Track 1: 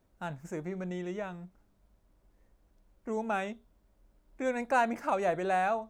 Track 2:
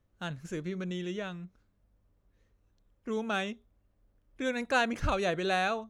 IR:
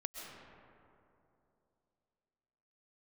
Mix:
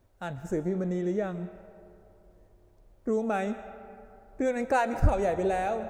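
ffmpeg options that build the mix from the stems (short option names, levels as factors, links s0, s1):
-filter_complex "[0:a]volume=1,asplit=3[s0][s1][s2];[s1]volume=0.596[s3];[1:a]lowpass=1000,dynaudnorm=f=210:g=3:m=2.24,volume=-1,volume=1.41,asplit=2[s4][s5];[s5]volume=0.224[s6];[s2]apad=whole_len=259982[s7];[s4][s7]sidechaincompress=threshold=0.0251:ratio=8:attack=16:release=236[s8];[2:a]atrim=start_sample=2205[s9];[s3][s6]amix=inputs=2:normalize=0[s10];[s10][s9]afir=irnorm=-1:irlink=0[s11];[s0][s8][s11]amix=inputs=3:normalize=0,equalizer=f=160:w=4.6:g=-4.5"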